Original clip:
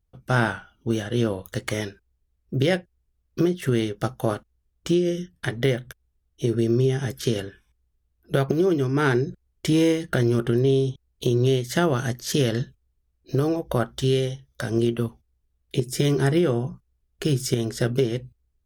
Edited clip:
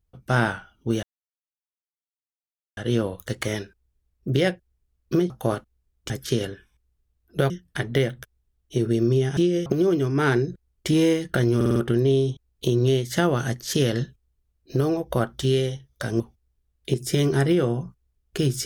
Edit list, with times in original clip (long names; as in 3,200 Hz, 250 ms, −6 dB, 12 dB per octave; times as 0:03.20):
0:01.03: splice in silence 1.74 s
0:03.56–0:04.09: remove
0:04.89–0:05.18: swap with 0:07.05–0:08.45
0:10.35: stutter 0.05 s, 5 plays
0:14.79–0:15.06: remove